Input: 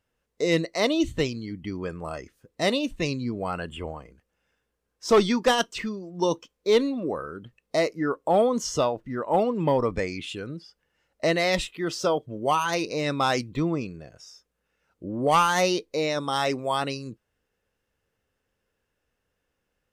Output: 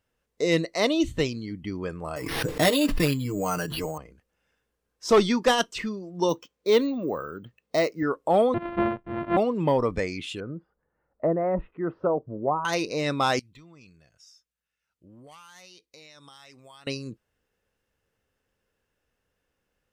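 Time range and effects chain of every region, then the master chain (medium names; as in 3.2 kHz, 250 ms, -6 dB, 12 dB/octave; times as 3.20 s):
2.16–3.98 s: comb 6.6 ms, depth 80% + careless resampling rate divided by 6×, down none, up hold + swell ahead of each attack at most 36 dB/s
6.29–8.03 s: high-pass 68 Hz + treble shelf 9.1 kHz -4 dB + careless resampling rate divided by 2×, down filtered, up hold
8.54–9.37 s: sorted samples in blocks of 128 samples + Gaussian low-pass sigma 4 samples
10.40–12.65 s: low-pass 1.4 kHz 24 dB/octave + low-pass that closes with the level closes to 930 Hz, closed at -20 dBFS
13.39–16.87 s: amplifier tone stack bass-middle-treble 5-5-5 + compression, threshold -46 dBFS
whole clip: none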